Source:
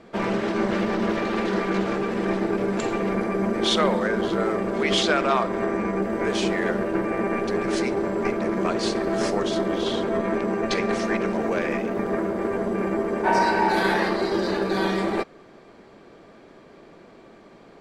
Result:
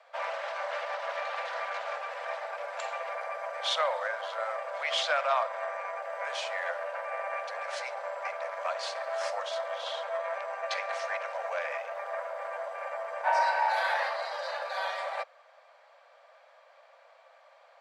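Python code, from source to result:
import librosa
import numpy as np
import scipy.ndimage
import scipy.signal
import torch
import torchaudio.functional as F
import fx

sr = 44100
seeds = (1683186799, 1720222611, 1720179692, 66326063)

y = scipy.signal.sosfilt(scipy.signal.butter(16, 530.0, 'highpass', fs=sr, output='sos'), x)
y = fx.high_shelf(y, sr, hz=6500.0, db=-9.5)
y = y * 10.0 ** (-4.5 / 20.0)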